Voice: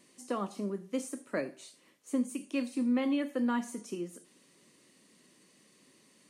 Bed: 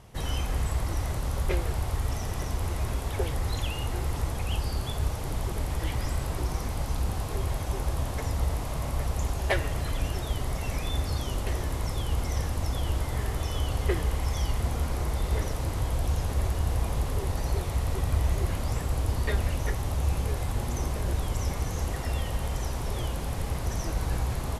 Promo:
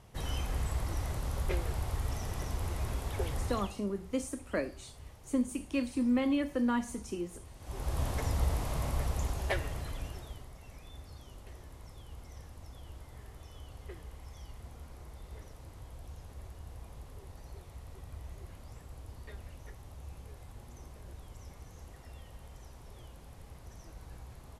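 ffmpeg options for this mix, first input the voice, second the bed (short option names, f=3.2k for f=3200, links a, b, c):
-filter_complex "[0:a]adelay=3200,volume=0.5dB[a];[1:a]volume=14dB,afade=t=out:st=3.41:d=0.39:silence=0.149624,afade=t=in:st=7.59:d=0.45:silence=0.105925,afade=t=out:st=8.82:d=1.68:silence=0.133352[b];[a][b]amix=inputs=2:normalize=0"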